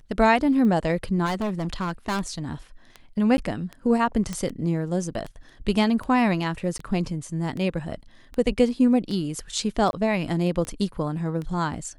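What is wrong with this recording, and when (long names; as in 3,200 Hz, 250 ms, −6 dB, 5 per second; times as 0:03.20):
scratch tick 78 rpm −22 dBFS
0:01.25–0:02.39: clipping −22.5 dBFS
0:03.37–0:03.38: drop-out 10 ms
0:04.33: click −16 dBFS
0:06.78–0:06.79: drop-out 13 ms
0:09.91–0:09.93: drop-out 21 ms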